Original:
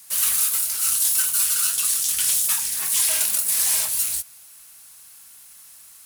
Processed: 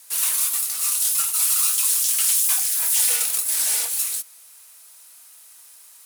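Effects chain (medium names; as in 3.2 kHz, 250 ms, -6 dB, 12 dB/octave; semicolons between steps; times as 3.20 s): 1.42–3.16 s: zero-crossing glitches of -23 dBFS; frequency shift -150 Hz; Bessel high-pass 280 Hz, order 8; trim -1 dB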